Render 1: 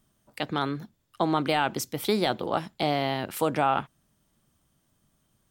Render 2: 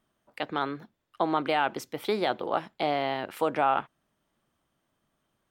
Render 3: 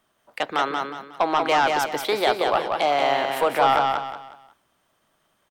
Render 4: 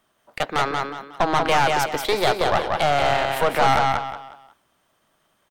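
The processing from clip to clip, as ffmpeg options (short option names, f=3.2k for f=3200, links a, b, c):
-af "bass=f=250:g=-11,treble=f=4k:g=-12"
-filter_complex "[0:a]acrossover=split=420[a][b];[a]alimiter=level_in=10.5dB:limit=-24dB:level=0:latency=1,volume=-10.5dB[c];[b]aeval=exprs='0.237*sin(PI/2*1.78*val(0)/0.237)':c=same[d];[c][d]amix=inputs=2:normalize=0,aecho=1:1:182|364|546|728:0.631|0.208|0.0687|0.0227"
-af "aeval=exprs='(tanh(7.94*val(0)+0.7)-tanh(0.7))/7.94':c=same,volume=5.5dB"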